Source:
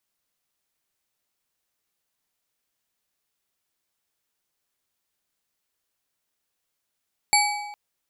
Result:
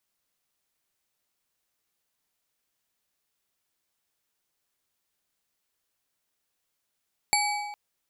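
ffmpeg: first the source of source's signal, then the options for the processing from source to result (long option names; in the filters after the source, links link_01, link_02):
-f lavfi -i "aevalsrc='0.126*pow(10,-3*t/1.23)*sin(2*PI*830*t)+0.112*pow(10,-3*t/0.907)*sin(2*PI*2288.3*t)+0.1*pow(10,-3*t/0.741)*sin(2*PI*4485.3*t)+0.0891*pow(10,-3*t/0.638)*sin(2*PI*7414.4*t)+0.0794*pow(10,-3*t/0.565)*sin(2*PI*11072.2*t)':duration=0.41:sample_rate=44100"
-af "acompressor=threshold=-21dB:ratio=6"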